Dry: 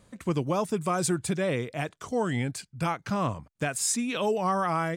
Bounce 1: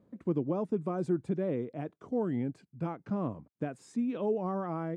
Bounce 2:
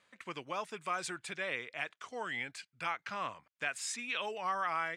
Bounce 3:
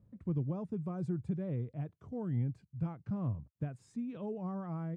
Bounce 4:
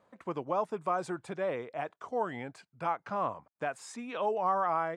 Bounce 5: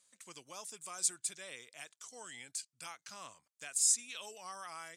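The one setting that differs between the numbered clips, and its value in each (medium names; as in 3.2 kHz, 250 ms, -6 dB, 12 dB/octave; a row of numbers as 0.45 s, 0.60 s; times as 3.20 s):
band-pass filter, frequency: 290 Hz, 2.2 kHz, 100 Hz, 840 Hz, 7.6 kHz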